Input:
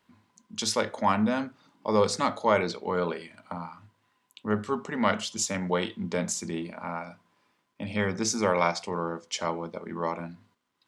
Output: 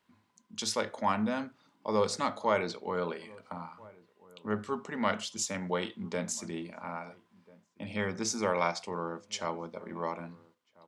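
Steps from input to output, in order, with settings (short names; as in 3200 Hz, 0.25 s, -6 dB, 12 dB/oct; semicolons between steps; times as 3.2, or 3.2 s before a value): low shelf 190 Hz -3 dB; outdoor echo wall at 230 m, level -23 dB; gain -4.5 dB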